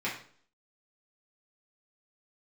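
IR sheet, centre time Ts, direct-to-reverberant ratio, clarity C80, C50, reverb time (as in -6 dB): 30 ms, -7.5 dB, 11.0 dB, 6.5 dB, 0.50 s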